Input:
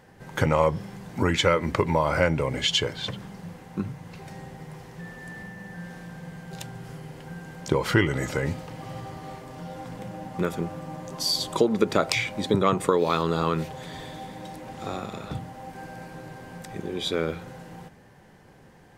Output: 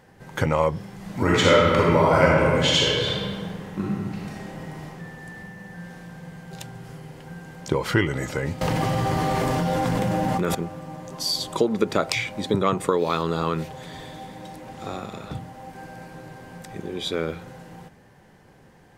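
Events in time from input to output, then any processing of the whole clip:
0.94–4.84 reverb throw, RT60 1.8 s, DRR -4.5 dB
8.61–10.55 fast leveller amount 100%

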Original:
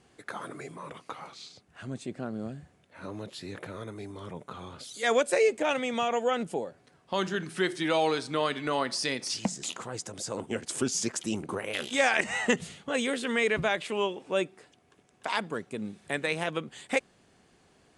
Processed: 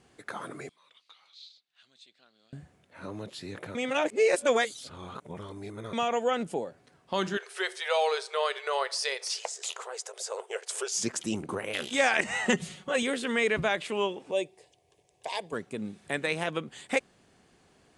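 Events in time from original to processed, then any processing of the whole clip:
0.69–2.53 band-pass 3800 Hz, Q 3.9
3.75–5.93 reverse
7.37–10.98 brick-wall FIR high-pass 380 Hz
12.45–13.03 comb 5.4 ms, depth 59%
14.31–15.53 fixed phaser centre 570 Hz, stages 4

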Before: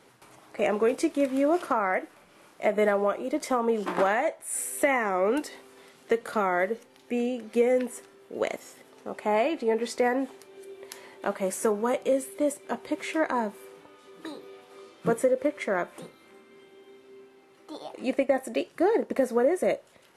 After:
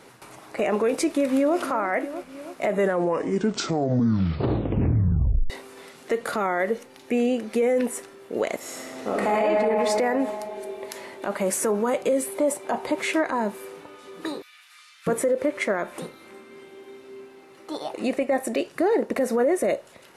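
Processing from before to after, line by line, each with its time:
1.06–1.59 echo throw 0.32 s, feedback 55%, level -14 dB
2.65 tape stop 2.85 s
8.58–9.38 reverb throw, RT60 2.7 s, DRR -6 dB
12.26–13 bell 820 Hz +9 dB 0.94 oct
14.42–15.07 inverse Chebyshev high-pass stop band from 260 Hz, stop band 80 dB
whole clip: notch 3200 Hz, Q 22; limiter -22.5 dBFS; gain +8 dB

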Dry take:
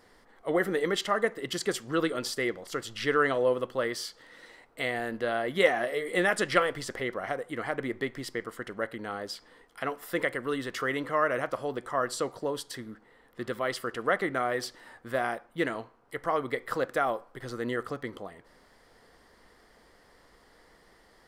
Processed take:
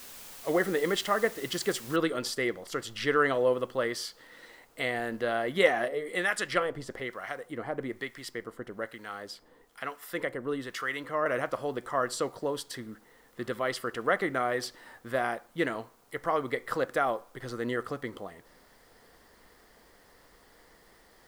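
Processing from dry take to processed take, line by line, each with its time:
1.96 noise floor step -47 dB -68 dB
5.88–11.26 harmonic tremolo 1.1 Hz, crossover 970 Hz

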